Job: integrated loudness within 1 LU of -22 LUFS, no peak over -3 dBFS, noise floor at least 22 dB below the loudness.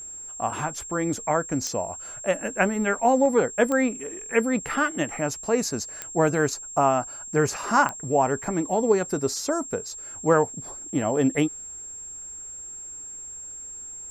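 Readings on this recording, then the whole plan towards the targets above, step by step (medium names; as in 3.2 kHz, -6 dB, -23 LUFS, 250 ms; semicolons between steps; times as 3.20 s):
clicks found 4; steady tone 7.5 kHz; tone level -36 dBFS; loudness -24.5 LUFS; peak level -7.0 dBFS; loudness target -22.0 LUFS
-> de-click; band-stop 7.5 kHz, Q 30; trim +2.5 dB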